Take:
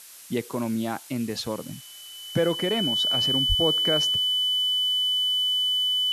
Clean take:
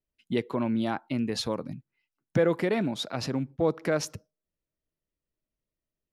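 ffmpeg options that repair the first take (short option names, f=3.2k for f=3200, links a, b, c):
-filter_complex "[0:a]bandreject=f=3k:w=30,asplit=3[a][b][c];[a]afade=t=out:st=3.48:d=0.02[d];[b]highpass=f=140:w=0.5412,highpass=f=140:w=1.3066,afade=t=in:st=3.48:d=0.02,afade=t=out:st=3.6:d=0.02[e];[c]afade=t=in:st=3.6:d=0.02[f];[d][e][f]amix=inputs=3:normalize=0,afftdn=nr=30:nf=-44"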